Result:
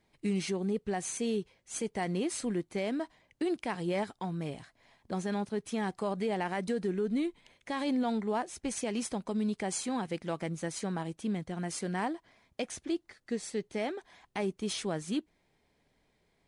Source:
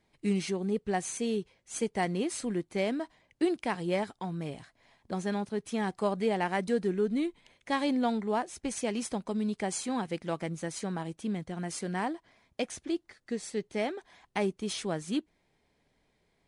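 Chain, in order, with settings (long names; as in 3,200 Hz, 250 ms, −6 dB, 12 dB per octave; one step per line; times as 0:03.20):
brickwall limiter −23.5 dBFS, peak gain reduction 7.5 dB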